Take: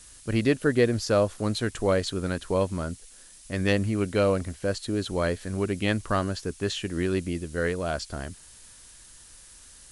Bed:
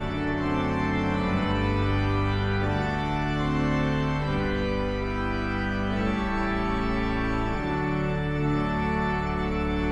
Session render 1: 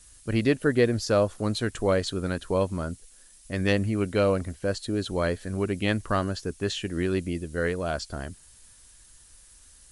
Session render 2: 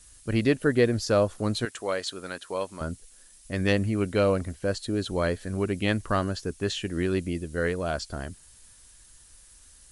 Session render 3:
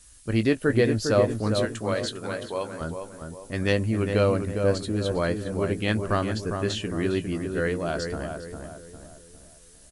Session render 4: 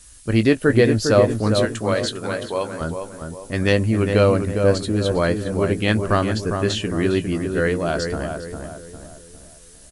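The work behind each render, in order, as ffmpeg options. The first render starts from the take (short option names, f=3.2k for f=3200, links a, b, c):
-af "afftdn=nr=6:nf=-50"
-filter_complex "[0:a]asettb=1/sr,asplit=3[a][b][c];[a]atrim=end=1.654[d];[b]atrim=start=1.65:end=2.81,asetpts=PTS-STARTPTS,afade=t=in:d=0.004:c=qsin,afade=t=out:st=1.156:d=0.004:c=qsin,highpass=f=860:p=1[e];[c]atrim=start=2.806[f];[d][e]acrossfade=d=0.004:c1=hsin:c2=qsin[g];[g][f]acrossfade=d=0.004:c1=qsin:c2=hsin"
-filter_complex "[0:a]asplit=2[a][b];[b]adelay=18,volume=-11dB[c];[a][c]amix=inputs=2:normalize=0,asplit=2[d][e];[e]adelay=404,lowpass=f=1.6k:p=1,volume=-5.5dB,asplit=2[f][g];[g]adelay=404,lowpass=f=1.6k:p=1,volume=0.45,asplit=2[h][i];[i]adelay=404,lowpass=f=1.6k:p=1,volume=0.45,asplit=2[j][k];[k]adelay=404,lowpass=f=1.6k:p=1,volume=0.45,asplit=2[l][m];[m]adelay=404,lowpass=f=1.6k:p=1,volume=0.45[n];[f][h][j][l][n]amix=inputs=5:normalize=0[o];[d][o]amix=inputs=2:normalize=0"
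-af "volume=6dB,alimiter=limit=-3dB:level=0:latency=1"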